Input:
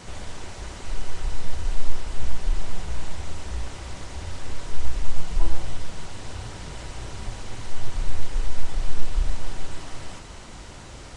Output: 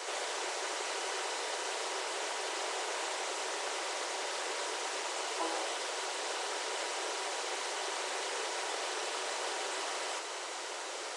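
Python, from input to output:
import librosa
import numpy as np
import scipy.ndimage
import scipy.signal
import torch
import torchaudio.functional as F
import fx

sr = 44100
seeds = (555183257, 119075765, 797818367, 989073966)

y = scipy.signal.sosfilt(scipy.signal.butter(8, 370.0, 'highpass', fs=sr, output='sos'), x)
y = y * librosa.db_to_amplitude(5.5)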